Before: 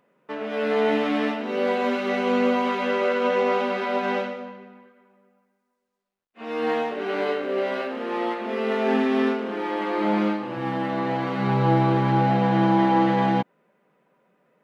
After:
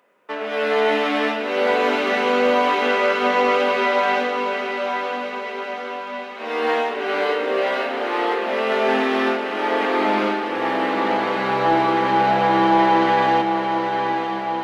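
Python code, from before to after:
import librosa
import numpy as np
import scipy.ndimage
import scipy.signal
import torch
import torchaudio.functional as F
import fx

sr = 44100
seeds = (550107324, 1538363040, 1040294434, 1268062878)

p1 = scipy.signal.sosfilt(scipy.signal.butter(2, 260.0, 'highpass', fs=sr, output='sos'), x)
p2 = fx.low_shelf(p1, sr, hz=410.0, db=-9.0)
p3 = p2 + fx.echo_diffused(p2, sr, ms=922, feedback_pct=59, wet_db=-6.0, dry=0)
p4 = 10.0 ** (-12.5 / 20.0) * np.tanh(p3 / 10.0 ** (-12.5 / 20.0))
y = p4 * librosa.db_to_amplitude(7.5)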